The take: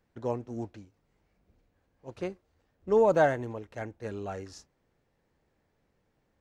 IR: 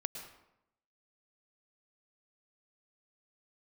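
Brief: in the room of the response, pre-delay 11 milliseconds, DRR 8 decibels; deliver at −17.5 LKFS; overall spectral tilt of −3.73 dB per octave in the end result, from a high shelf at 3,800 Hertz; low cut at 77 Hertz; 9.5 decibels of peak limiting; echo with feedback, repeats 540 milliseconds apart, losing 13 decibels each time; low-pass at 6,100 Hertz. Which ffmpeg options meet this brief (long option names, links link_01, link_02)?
-filter_complex "[0:a]highpass=77,lowpass=6100,highshelf=frequency=3800:gain=3.5,alimiter=limit=-21.5dB:level=0:latency=1,aecho=1:1:540|1080|1620:0.224|0.0493|0.0108,asplit=2[link_01][link_02];[1:a]atrim=start_sample=2205,adelay=11[link_03];[link_02][link_03]afir=irnorm=-1:irlink=0,volume=-8dB[link_04];[link_01][link_04]amix=inputs=2:normalize=0,volume=17.5dB"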